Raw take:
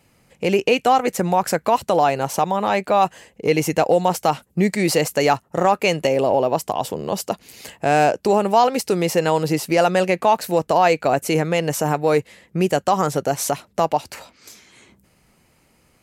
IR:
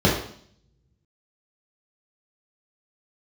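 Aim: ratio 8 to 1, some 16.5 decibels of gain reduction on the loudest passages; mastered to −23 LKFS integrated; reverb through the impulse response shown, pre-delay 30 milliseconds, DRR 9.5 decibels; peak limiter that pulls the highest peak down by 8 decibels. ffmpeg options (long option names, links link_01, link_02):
-filter_complex "[0:a]acompressor=threshold=-29dB:ratio=8,alimiter=limit=-23dB:level=0:latency=1,asplit=2[link_01][link_02];[1:a]atrim=start_sample=2205,adelay=30[link_03];[link_02][link_03]afir=irnorm=-1:irlink=0,volume=-29dB[link_04];[link_01][link_04]amix=inputs=2:normalize=0,volume=10.5dB"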